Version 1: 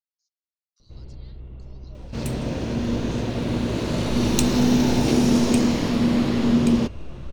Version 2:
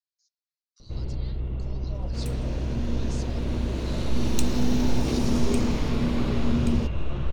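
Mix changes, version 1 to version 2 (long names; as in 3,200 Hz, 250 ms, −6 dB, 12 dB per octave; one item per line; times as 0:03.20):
speech +7.0 dB
first sound +9.0 dB
second sound −7.5 dB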